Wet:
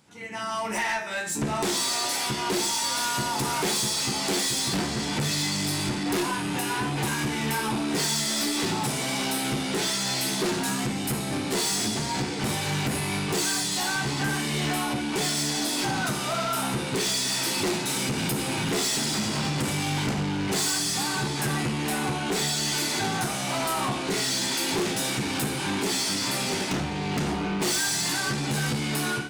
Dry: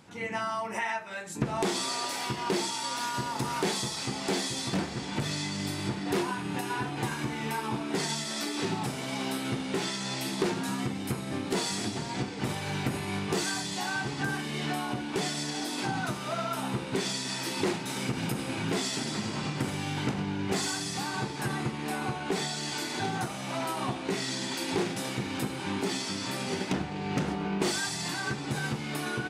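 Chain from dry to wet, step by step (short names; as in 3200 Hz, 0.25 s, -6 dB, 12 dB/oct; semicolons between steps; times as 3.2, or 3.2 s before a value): high shelf 4300 Hz +8 dB; AGC gain up to 15.5 dB; resonator 72 Hz, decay 0.44 s, harmonics all, mix 70%; soft clip -22.5 dBFS, distortion -11 dB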